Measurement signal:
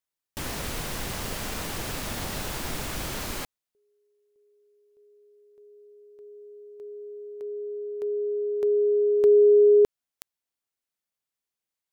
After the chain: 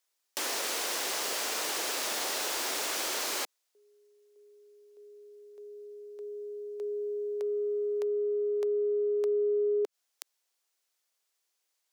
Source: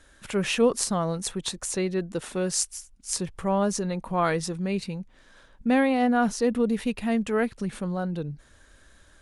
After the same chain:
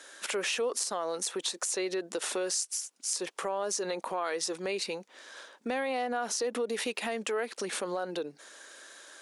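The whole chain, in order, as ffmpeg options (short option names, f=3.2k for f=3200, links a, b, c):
-af "highpass=f=360:w=0.5412,highpass=f=360:w=1.3066,equalizer=f=5.8k:w=0.88:g=5,acompressor=threshold=-36dB:ratio=5:attack=3:release=80:knee=1:detection=rms,volume=7dB"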